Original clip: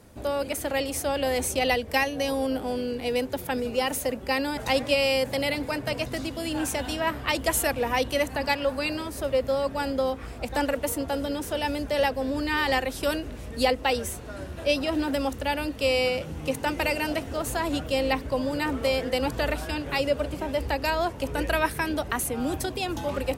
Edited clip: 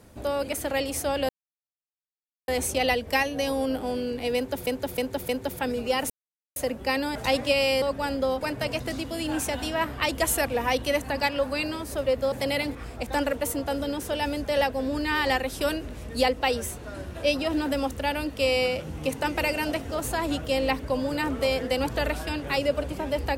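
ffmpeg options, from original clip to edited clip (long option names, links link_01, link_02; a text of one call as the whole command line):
ffmpeg -i in.wav -filter_complex "[0:a]asplit=10[link_01][link_02][link_03][link_04][link_05][link_06][link_07][link_08][link_09][link_10];[link_01]atrim=end=1.29,asetpts=PTS-STARTPTS,afade=type=out:start_time=1.286:duration=0.004:curve=hsin,apad=pad_dur=1.19[link_11];[link_02]atrim=start=1.29:end=3.482,asetpts=PTS-STARTPTS,afade=type=in:duration=0.004:curve=hsin[link_12];[link_03]atrim=start=3.168:end=3.482[link_13];[link_04]atrim=start=3.168:end=3.482[link_14];[link_05]atrim=start=3.168:end=3.98,asetpts=PTS-STARTPTS,afade=type=out:start_time=0.808:duration=0.004:curve=hsin,apad=pad_dur=0.46[link_15];[link_06]atrim=start=3.98:end=5.242,asetpts=PTS-STARTPTS,afade=type=in:duration=0.004:curve=hsin[link_16];[link_07]atrim=start=9.578:end=10.172[link_17];[link_08]atrim=start=5.668:end=9.582[link_18];[link_09]atrim=start=5.238:end=5.672[link_19];[link_10]atrim=start=10.168[link_20];[link_11][link_12]concat=n=2:v=0:a=1[link_21];[link_21][link_13]acrossfade=duration=0.004:curve1=hsin:curve2=hsin[link_22];[link_22][link_14]acrossfade=duration=0.004:curve1=hsin:curve2=hsin[link_23];[link_15][link_16]concat=n=2:v=0:a=1[link_24];[link_23][link_24]acrossfade=duration=0.004:curve1=hsin:curve2=hsin[link_25];[link_25][link_17]acrossfade=duration=0.004:curve1=hsin:curve2=hsin[link_26];[link_26][link_18]acrossfade=duration=0.004:curve1=hsin:curve2=hsin[link_27];[link_27][link_19]acrossfade=duration=0.004:curve1=hsin:curve2=hsin[link_28];[link_28][link_20]acrossfade=duration=0.004:curve1=hsin:curve2=hsin" out.wav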